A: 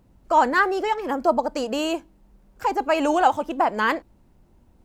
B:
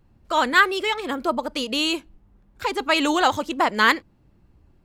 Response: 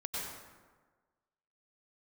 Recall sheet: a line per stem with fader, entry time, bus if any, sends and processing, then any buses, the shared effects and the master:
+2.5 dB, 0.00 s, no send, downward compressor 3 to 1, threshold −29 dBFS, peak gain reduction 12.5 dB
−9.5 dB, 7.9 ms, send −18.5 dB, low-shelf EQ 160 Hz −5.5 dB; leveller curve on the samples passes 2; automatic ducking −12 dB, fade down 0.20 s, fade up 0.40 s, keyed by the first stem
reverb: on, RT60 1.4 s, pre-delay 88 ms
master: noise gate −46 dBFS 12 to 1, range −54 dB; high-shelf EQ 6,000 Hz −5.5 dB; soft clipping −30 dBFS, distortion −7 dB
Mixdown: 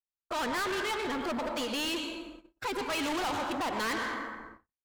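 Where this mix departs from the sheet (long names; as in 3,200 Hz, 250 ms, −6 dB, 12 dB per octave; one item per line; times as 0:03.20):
stem A +2.5 dB → −6.5 dB
stem B −9.5 dB → +2.0 dB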